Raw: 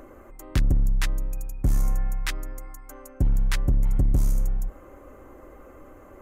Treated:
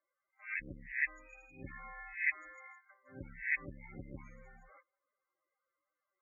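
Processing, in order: spectral swells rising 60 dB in 0.38 s; gate -38 dBFS, range -30 dB; band-pass 2200 Hz, Q 2; loudest bins only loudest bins 16; low-pass opened by the level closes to 2200 Hz, open at -41 dBFS; gain +5.5 dB

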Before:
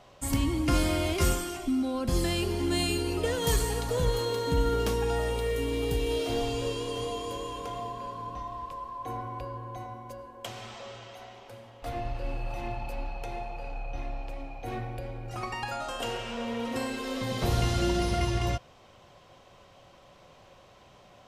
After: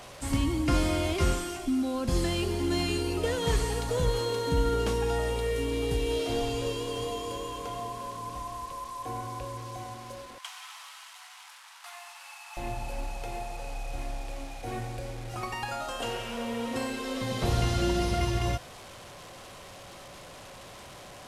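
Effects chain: delta modulation 64 kbps, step -40.5 dBFS; 10.38–12.57 steep high-pass 870 Hz 48 dB/oct

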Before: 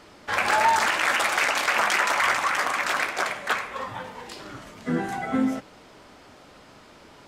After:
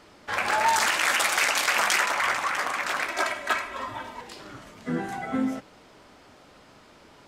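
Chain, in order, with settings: 0.66–2.06 high shelf 3300 Hz +9 dB; 3.08–4.21 comb 3.1 ms, depth 99%; gain -3 dB

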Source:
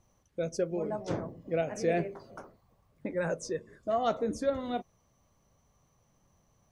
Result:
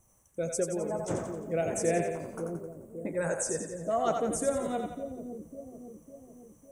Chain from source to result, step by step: resonant high shelf 6200 Hz +12 dB, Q 3; split-band echo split 490 Hz, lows 0.553 s, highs 87 ms, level -5 dB

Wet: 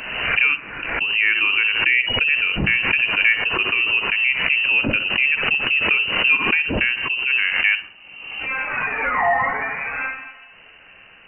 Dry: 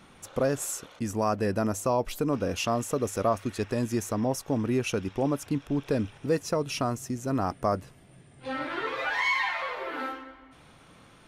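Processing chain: inverted band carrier 2900 Hz; dark delay 63 ms, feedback 36%, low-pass 1400 Hz, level -9.5 dB; backwards sustainer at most 43 dB/s; gain +7.5 dB

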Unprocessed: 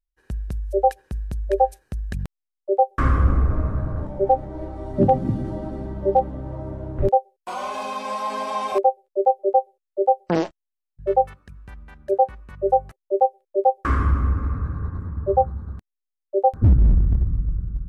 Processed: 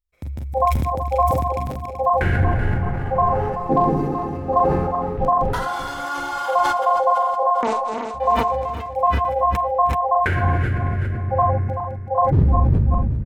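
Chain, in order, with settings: regenerating reverse delay 0.257 s, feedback 64%, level -6 dB; dynamic EQ 660 Hz, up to +6 dB, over -38 dBFS, Q 7.2; on a send: early reflections 44 ms -12 dB, 57 ms -6.5 dB, 67 ms -12 dB; on the sum: speed mistake 33 rpm record played at 45 rpm; sustainer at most 27 dB/s; gain -3 dB

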